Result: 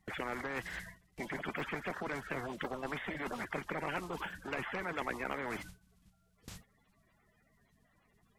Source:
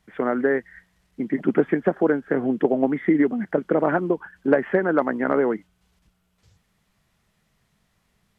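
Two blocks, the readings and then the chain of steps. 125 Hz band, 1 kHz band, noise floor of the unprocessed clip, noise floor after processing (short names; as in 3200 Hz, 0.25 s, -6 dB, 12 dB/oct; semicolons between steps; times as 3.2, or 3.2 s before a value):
-13.0 dB, -11.0 dB, -69 dBFS, -72 dBFS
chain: bin magnitudes rounded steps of 30 dB; gate with hold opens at -47 dBFS; reverse; compressor 5:1, threshold -28 dBFS, peak gain reduction 14 dB; reverse; spectral compressor 4:1; gain -6 dB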